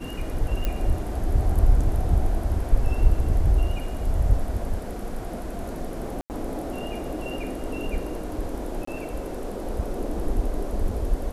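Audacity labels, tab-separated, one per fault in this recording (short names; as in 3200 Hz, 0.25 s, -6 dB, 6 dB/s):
0.650000	0.650000	pop -13 dBFS
6.210000	6.300000	gap 89 ms
8.850000	8.870000	gap 24 ms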